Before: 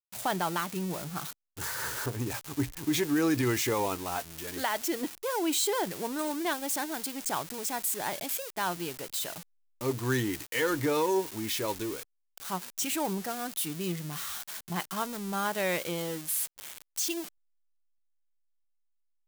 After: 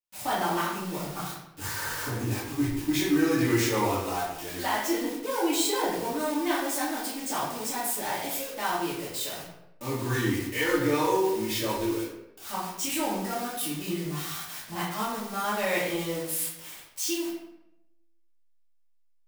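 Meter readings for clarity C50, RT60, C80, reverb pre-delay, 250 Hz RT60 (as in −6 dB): 2.0 dB, 0.85 s, 5.0 dB, 3 ms, 0.95 s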